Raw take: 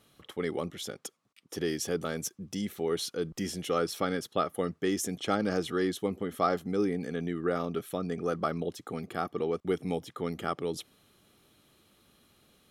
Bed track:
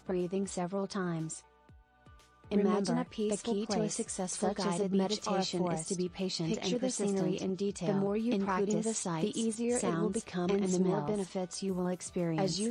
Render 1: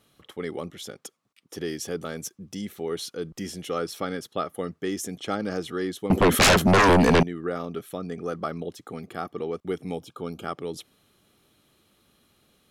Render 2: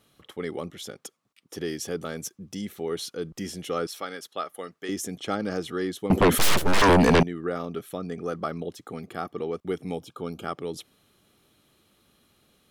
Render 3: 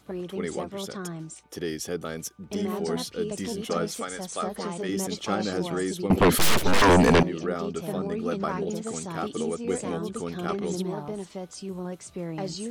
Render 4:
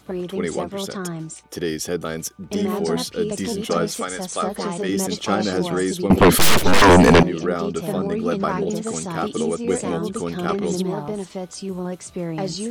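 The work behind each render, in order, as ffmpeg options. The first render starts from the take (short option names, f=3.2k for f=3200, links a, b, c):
-filter_complex "[0:a]asettb=1/sr,asplit=3[a][b][c];[a]atrim=end=6.104[d];[b]atrim=start=6.1:end=7.23,asetpts=PTS-STARTPTS,afade=t=in:d=0.004:c=qsin,afade=t=out:st=1.126:d=0.004:c=qsin,aeval=exprs='0.224*sin(PI/2*8.91*val(0)/0.224)':c=same[e];[c]atrim=start=7.226[f];[d][e]acrossfade=d=0.004:c1=hsin:c2=qsin[g];[g][f]acrossfade=d=0.004:c1=qsin:c2=hsin,asettb=1/sr,asplit=3[h][i][j];[h]atrim=end=10.034[k];[i]atrim=start=10.03:end=10.44,asetpts=PTS-STARTPTS,afade=t=in:d=0.004:c=qsin,afade=t=out:st=0.406:d=0.004:c=qsin,asuperstop=centerf=1900:order=12:qfactor=3.5[l];[j]atrim=start=10.436[m];[k][l]acrossfade=d=0.004:c1=hsin:c2=qsin[n];[n][m]acrossfade=d=0.004:c1=qsin:c2=hsin"
-filter_complex "[0:a]asettb=1/sr,asplit=3[a][b][c];[a]atrim=end=3.874[d];[b]atrim=start=3.87:end=4.89,asetpts=PTS-STARTPTS,afade=t=in:d=0.004:c=qsin,afade=t=out:st=1.016:d=0.004:c=qsin,highpass=f=820:p=1[e];[c]atrim=start=4.886[f];[d][e]acrossfade=d=0.004:c1=hsin:c2=qsin[g];[g][f]acrossfade=d=0.004:c1=qsin:c2=hsin,asettb=1/sr,asplit=3[h][i][j];[h]atrim=end=6.384[k];[i]atrim=start=6.38:end=6.82,asetpts=PTS-STARTPTS,afade=t=in:d=0.004:c=qsin,afade=t=out:st=0.436:d=0.004:c=qsin,aeval=exprs='abs(val(0))':c=same[l];[j]atrim=start=6.816[m];[k][l]acrossfade=d=0.004:c1=hsin:c2=qsin[n];[n][m]acrossfade=d=0.004:c1=qsin:c2=hsin"
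-filter_complex "[1:a]volume=-1dB[a];[0:a][a]amix=inputs=2:normalize=0"
-af "volume=6.5dB"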